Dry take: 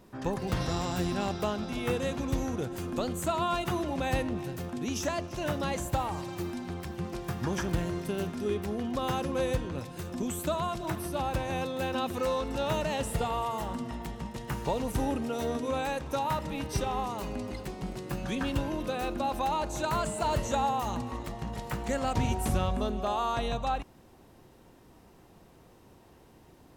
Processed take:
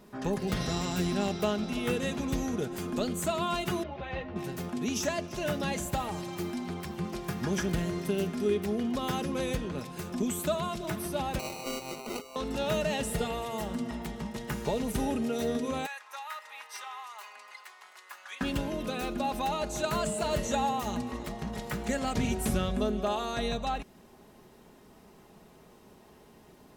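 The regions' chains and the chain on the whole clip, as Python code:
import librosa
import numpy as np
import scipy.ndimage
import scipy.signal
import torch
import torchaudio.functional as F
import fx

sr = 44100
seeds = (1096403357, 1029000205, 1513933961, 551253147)

y = fx.chain(x, sr, fx.gaussian_blur(sigma=2.5),
    fx.peak_eq(hz=260.0, db=-11.0, octaves=0.62),
    fx.ensemble(), at=(3.83, 4.36))
y = fx.chain(y, sr, fx.highpass(hz=370.0, slope=12),
    fx.over_compress(threshold_db=-37.0, ratio=-0.5),
    fx.sample_hold(seeds[0], rate_hz=1700.0, jitter_pct=0), at=(11.39, 12.36))
y = fx.chain(y, sr, fx.ladder_highpass(hz=890.0, resonance_pct=35),
    fx.peak_eq(hz=2000.0, db=5.0, octaves=0.36), at=(15.86, 18.41))
y = fx.low_shelf(y, sr, hz=85.0, db=-7.0)
y = y + 0.45 * np.pad(y, (int(4.8 * sr / 1000.0), 0))[:len(y)]
y = fx.dynamic_eq(y, sr, hz=970.0, q=1.7, threshold_db=-45.0, ratio=4.0, max_db=-7)
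y = y * 10.0 ** (1.5 / 20.0)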